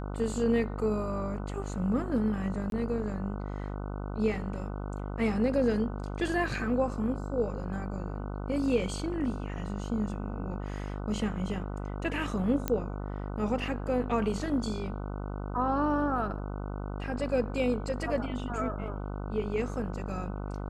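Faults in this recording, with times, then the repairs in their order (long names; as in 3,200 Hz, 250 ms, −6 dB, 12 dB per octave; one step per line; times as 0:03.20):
mains buzz 50 Hz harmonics 30 −36 dBFS
0:02.70–0:02.72: drop-out 22 ms
0:12.68: click −14 dBFS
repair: click removal
hum removal 50 Hz, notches 30
repair the gap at 0:02.70, 22 ms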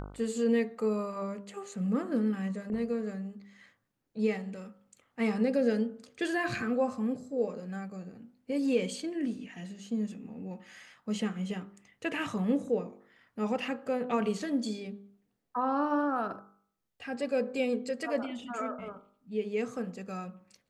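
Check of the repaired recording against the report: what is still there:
none of them is left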